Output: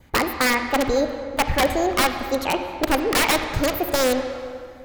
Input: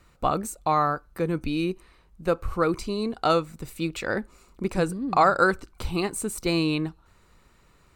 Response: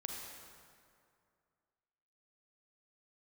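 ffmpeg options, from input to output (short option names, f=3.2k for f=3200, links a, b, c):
-filter_complex "[0:a]adynamicequalizer=threshold=0.0112:dfrequency=1500:dqfactor=2.1:tfrequency=1500:tqfactor=2.1:attack=5:release=100:ratio=0.375:range=3.5:mode=cutabove:tftype=bell,aeval=exprs='(mod(6.31*val(0)+1,2)-1)/6.31':c=same,asetrate=72324,aresample=44100,asplit=2[a][b];[1:a]atrim=start_sample=2205,lowpass=3.2k[c];[b][c]afir=irnorm=-1:irlink=0,volume=1.5dB[d];[a][d]amix=inputs=2:normalize=0,volume=1.5dB"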